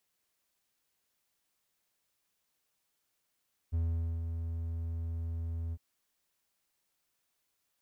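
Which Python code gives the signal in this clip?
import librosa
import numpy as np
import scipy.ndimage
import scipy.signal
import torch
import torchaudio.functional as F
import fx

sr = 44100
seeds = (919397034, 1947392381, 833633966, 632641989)

y = fx.adsr_tone(sr, wave='triangle', hz=82.8, attack_ms=24.0, decay_ms=458.0, sustain_db=-6.0, held_s=2.01, release_ms=46.0, level_db=-25.5)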